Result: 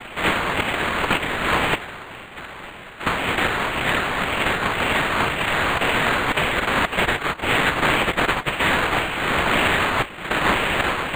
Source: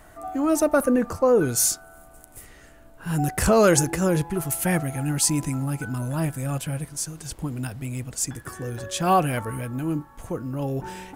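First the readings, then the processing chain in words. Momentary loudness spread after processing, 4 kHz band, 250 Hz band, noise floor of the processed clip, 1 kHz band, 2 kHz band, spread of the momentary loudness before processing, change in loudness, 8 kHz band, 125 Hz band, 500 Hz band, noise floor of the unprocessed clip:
7 LU, +12.5 dB, -3.0 dB, -38 dBFS, +7.5 dB, +15.5 dB, 13 LU, +4.0 dB, -10.0 dB, -4.0 dB, -1.5 dB, -50 dBFS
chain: sine folder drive 14 dB, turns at -4 dBFS; noise vocoder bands 1; LFO high-pass saw down 1.9 Hz 900–3300 Hz; bell 800 Hz -4 dB 2.5 oct; negative-ratio compressor -13 dBFS, ratio -1; vibrato 6.9 Hz 14 cents; decimation joined by straight lines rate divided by 8×; gain -5.5 dB

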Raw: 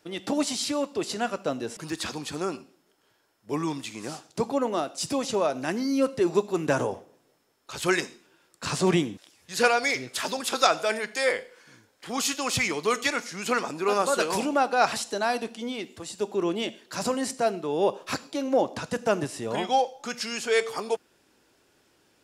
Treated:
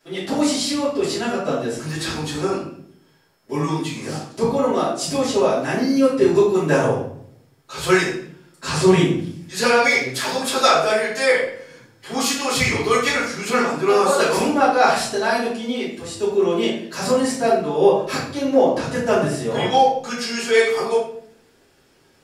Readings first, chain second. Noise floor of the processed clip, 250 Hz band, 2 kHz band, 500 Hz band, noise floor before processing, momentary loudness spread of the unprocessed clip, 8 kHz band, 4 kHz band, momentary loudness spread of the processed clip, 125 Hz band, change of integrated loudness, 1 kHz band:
-57 dBFS, +8.0 dB, +7.5 dB, +8.5 dB, -66 dBFS, 10 LU, +5.0 dB, +6.5 dB, 10 LU, +10.0 dB, +7.5 dB, +7.0 dB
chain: shoebox room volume 100 m³, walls mixed, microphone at 2.9 m; gain -4.5 dB

